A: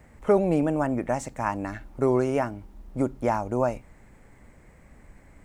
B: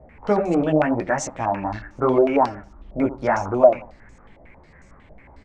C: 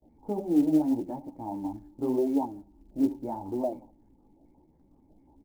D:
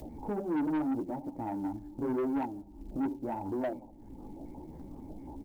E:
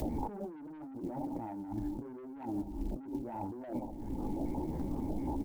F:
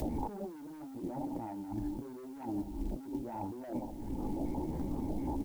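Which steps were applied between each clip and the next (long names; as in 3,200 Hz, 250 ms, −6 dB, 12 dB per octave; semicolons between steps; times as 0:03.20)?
repeating echo 82 ms, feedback 30%, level −14.5 dB; multi-voice chorus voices 2, 0.85 Hz, delay 15 ms, depth 4.3 ms; low-pass on a step sequencer 11 Hz 650–6,300 Hz; level +5.5 dB
formant resonators in series u; noise gate with hold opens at −54 dBFS; floating-point word with a short mantissa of 4 bits
upward compression, threshold −30 dBFS; soft clipping −27.5 dBFS, distortion −8 dB
compressor whose output falls as the input rises −43 dBFS, ratio −1; level +3.5 dB
background noise white −67 dBFS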